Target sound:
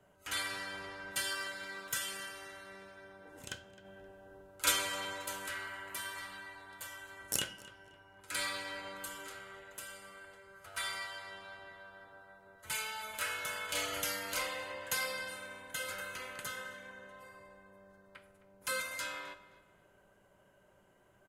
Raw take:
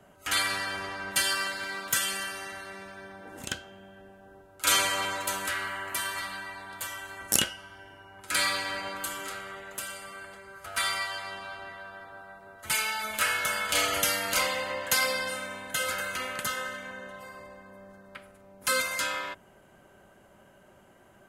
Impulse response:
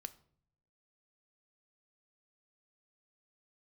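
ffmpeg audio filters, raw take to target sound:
-filter_complex "[0:a]asplit=3[a][b][c];[a]afade=t=out:st=3.84:d=0.02[d];[b]acontrast=50,afade=t=in:st=3.84:d=0.02,afade=t=out:st=4.7:d=0.02[e];[c]afade=t=in:st=4.7:d=0.02[f];[d][e][f]amix=inputs=3:normalize=0,asplit=2[g][h];[h]adelay=262,lowpass=f=3.4k:p=1,volume=-17dB,asplit=2[i][j];[j]adelay=262,lowpass=f=3.4k:p=1,volume=0.33,asplit=2[k][l];[l]adelay=262,lowpass=f=3.4k:p=1,volume=0.33[m];[g][i][k][m]amix=inputs=4:normalize=0[n];[1:a]atrim=start_sample=2205,asetrate=57330,aresample=44100[o];[n][o]afir=irnorm=-1:irlink=0,volume=-3dB"

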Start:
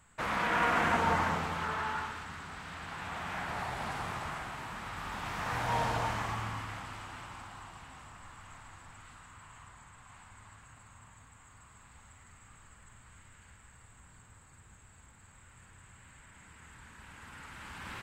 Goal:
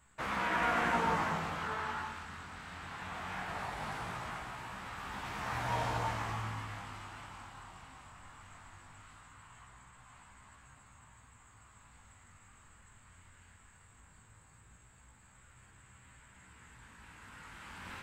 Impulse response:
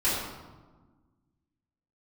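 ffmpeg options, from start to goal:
-af "flanger=delay=15:depth=7.5:speed=0.19"

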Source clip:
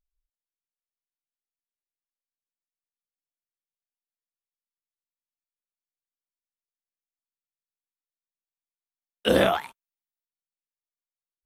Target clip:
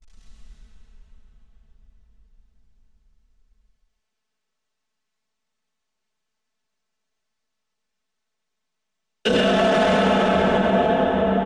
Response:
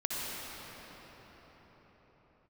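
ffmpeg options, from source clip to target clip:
-filter_complex "[0:a]aeval=exprs='val(0)+0.5*0.0562*sgn(val(0))':c=same,lowpass=f=7.3k:w=0.5412,lowpass=f=7.3k:w=1.3066,agate=range=-58dB:threshold=-30dB:ratio=16:detection=peak,aecho=1:1:4.6:0.86,asplit=2[a][b];[b]acompressor=threshold=-30dB:ratio=6,volume=1dB[c];[a][c]amix=inputs=2:normalize=0,aecho=1:1:133:0.501[d];[1:a]atrim=start_sample=2205,asetrate=29547,aresample=44100[e];[d][e]afir=irnorm=-1:irlink=0,alimiter=level_in=7dB:limit=-1dB:release=50:level=0:latency=1,volume=-9dB"

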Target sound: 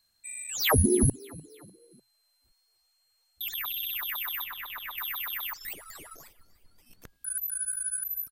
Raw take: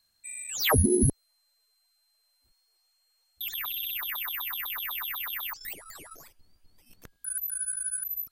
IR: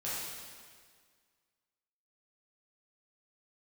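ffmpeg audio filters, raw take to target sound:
-filter_complex "[0:a]asettb=1/sr,asplit=3[a][b][c];[a]atrim=end=4.444[d];[b]atrim=start=4.44:end=4.98,asetpts=PTS-STARTPTS,afade=t=in:d=0.004:c=qsin,afade=t=out:st=0.536:d=0.004:c=qsin,acrossover=split=3100[e][f];[f]acompressor=threshold=-42dB:ratio=4:attack=1:release=60[g];[e][g]amix=inputs=2:normalize=0[h];[c]atrim=start=4.976[i];[d][h]acrossfade=d=0.004:c1=hsin:c2=qsin[j];[j][i]acrossfade=d=0.004:c1=qsin:c2=hsin,asplit=4[k][l][m][n];[l]adelay=299,afreqshift=36,volume=-23dB[o];[m]adelay=598,afreqshift=72,volume=-29dB[p];[n]adelay=897,afreqshift=108,volume=-35dB[q];[k][o][p][q]amix=inputs=4:normalize=0"

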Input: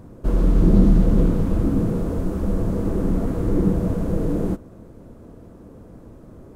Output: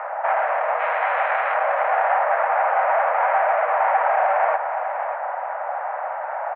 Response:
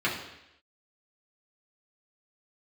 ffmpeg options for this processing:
-filter_complex "[0:a]asplit=2[a][b];[b]highpass=f=720:p=1,volume=36dB,asoftclip=type=tanh:threshold=-3dB[c];[a][c]amix=inputs=2:normalize=0,lowpass=f=1.8k:p=1,volume=-6dB,asettb=1/sr,asplit=3[d][e][f];[d]atrim=end=0.794[g];[e]atrim=start=0.79:end=1.54,asetpts=PTS-STARTPTS,afade=t=in:d=0.004:c=qsin,afade=t=out:st=0.746:d=0.004:c=qsin,tiltshelf=f=1.4k:g=-7[h];[f]atrim=start=1.536[i];[g][h]acrossfade=d=0.004:c1=hsin:c2=qsin[j];[j][i]acrossfade=d=0.004:c1=qsin:c2=hsin,alimiter=limit=-11dB:level=0:latency=1:release=18,aemphasis=mode=production:type=75kf,aecho=1:1:595:0.355,highpass=f=340:t=q:w=0.5412,highpass=f=340:t=q:w=1.307,lowpass=f=2k:t=q:w=0.5176,lowpass=f=2k:t=q:w=0.7071,lowpass=f=2k:t=q:w=1.932,afreqshift=290,volume=-2.5dB"

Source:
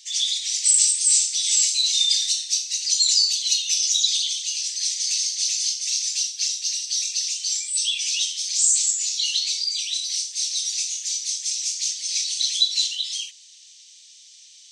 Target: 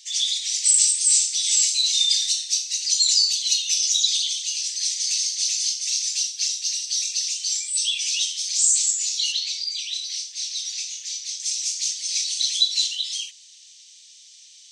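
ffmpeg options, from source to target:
-filter_complex "[0:a]asettb=1/sr,asplit=3[a][b][c];[a]atrim=end=9.324[d];[b]atrim=start=9.32:end=11.4,asetpts=PTS-STARTPTS,afade=t=in:d=0.004:c=qsin,afade=t=out:st=2.076:d=0.004:c=qsin,equalizer=f=9.7k:t=o:w=1.1:g=-10.5[e];[c]atrim=start=11.396[f];[d][e]acrossfade=d=0.004:c1=hsin:c2=qsin[g];[g][f]acrossfade=d=0.004:c1=qsin:c2=hsin"

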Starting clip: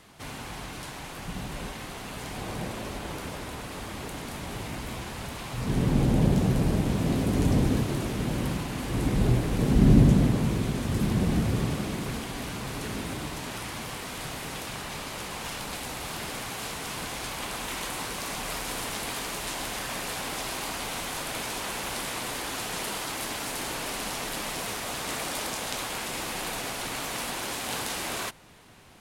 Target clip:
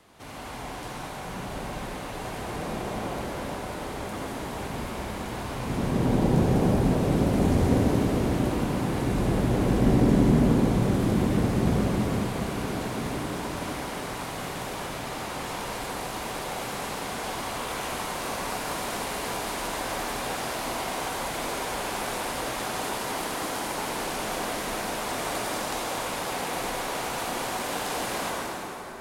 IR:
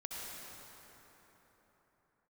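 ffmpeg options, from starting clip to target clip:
-filter_complex "[0:a]acrossover=split=270|1100[a][b][c];[a]alimiter=limit=-17dB:level=0:latency=1[d];[b]acontrast=33[e];[d][e][c]amix=inputs=3:normalize=0[f];[1:a]atrim=start_sample=2205[g];[f][g]afir=irnorm=-1:irlink=0"

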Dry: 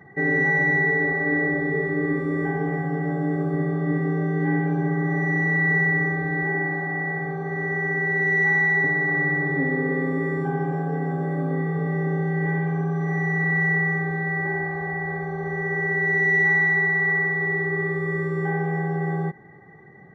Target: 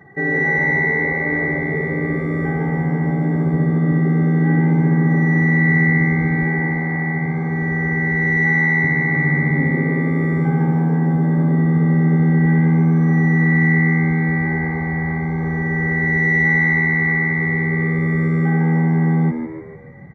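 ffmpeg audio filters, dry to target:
-filter_complex "[0:a]asubboost=boost=7:cutoff=130,asplit=6[a][b][c][d][e][f];[b]adelay=150,afreqshift=79,volume=-9dB[g];[c]adelay=300,afreqshift=158,volume=-16.1dB[h];[d]adelay=450,afreqshift=237,volume=-23.3dB[i];[e]adelay=600,afreqshift=316,volume=-30.4dB[j];[f]adelay=750,afreqshift=395,volume=-37.5dB[k];[a][g][h][i][j][k]amix=inputs=6:normalize=0,volume=2.5dB"

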